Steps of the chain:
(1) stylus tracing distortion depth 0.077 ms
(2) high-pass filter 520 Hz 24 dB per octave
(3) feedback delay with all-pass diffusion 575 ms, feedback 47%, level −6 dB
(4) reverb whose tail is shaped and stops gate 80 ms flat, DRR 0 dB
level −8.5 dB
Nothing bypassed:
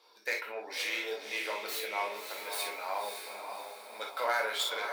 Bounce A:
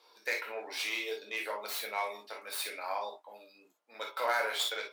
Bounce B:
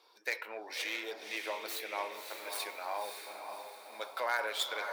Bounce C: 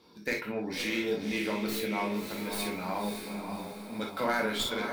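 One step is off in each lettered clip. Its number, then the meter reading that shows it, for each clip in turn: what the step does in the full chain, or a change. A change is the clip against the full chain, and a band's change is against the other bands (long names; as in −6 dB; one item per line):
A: 3, echo-to-direct ratio 2.0 dB to 0.0 dB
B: 4, echo-to-direct ratio 2.0 dB to −5.0 dB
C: 2, 250 Hz band +21.0 dB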